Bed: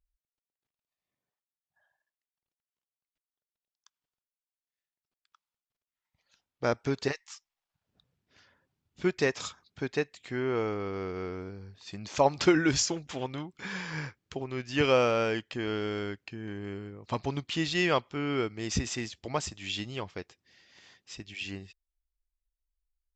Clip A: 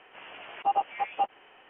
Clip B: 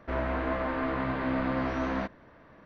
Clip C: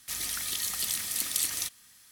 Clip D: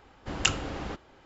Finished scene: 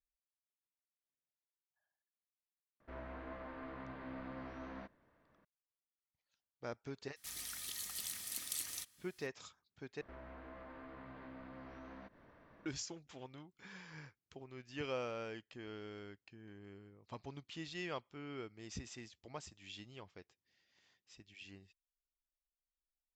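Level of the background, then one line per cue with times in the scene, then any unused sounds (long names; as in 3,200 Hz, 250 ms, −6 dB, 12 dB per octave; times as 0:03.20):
bed −16.5 dB
0:02.80: mix in B −18 dB
0:07.16: mix in C −12.5 dB
0:10.01: overwrite with B −8.5 dB + downward compressor 2.5 to 1, threshold −48 dBFS
not used: A, D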